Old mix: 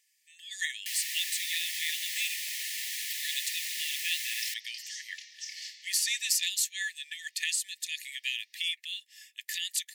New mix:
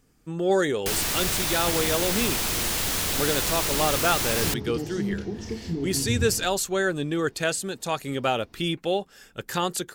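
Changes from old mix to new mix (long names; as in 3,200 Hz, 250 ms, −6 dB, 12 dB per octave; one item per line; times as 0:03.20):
first sound: add high-shelf EQ 2,000 Hz +9.5 dB
second sound: add spectral tilt −2 dB per octave
master: remove linear-phase brick-wall high-pass 1,700 Hz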